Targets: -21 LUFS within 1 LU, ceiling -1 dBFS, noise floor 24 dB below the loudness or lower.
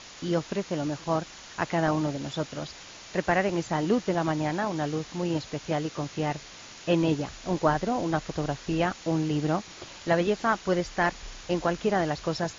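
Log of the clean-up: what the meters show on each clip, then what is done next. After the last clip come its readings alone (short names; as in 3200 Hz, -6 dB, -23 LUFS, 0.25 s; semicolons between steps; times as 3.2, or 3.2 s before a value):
noise floor -46 dBFS; noise floor target -53 dBFS; loudness -28.5 LUFS; peak -10.0 dBFS; loudness target -21.0 LUFS
-> denoiser 7 dB, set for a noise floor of -46 dBFS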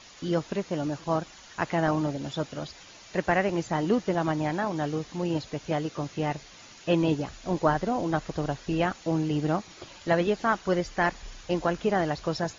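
noise floor -50 dBFS; noise floor target -53 dBFS
-> denoiser 6 dB, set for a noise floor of -50 dBFS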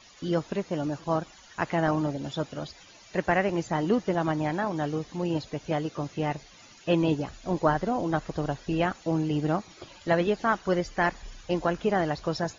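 noise floor -53 dBFS; loudness -28.5 LUFS; peak -10.0 dBFS; loudness target -21.0 LUFS
-> gain +7.5 dB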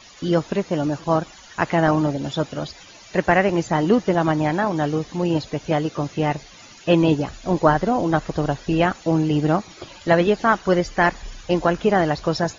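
loudness -21.0 LUFS; peak -2.5 dBFS; noise floor -45 dBFS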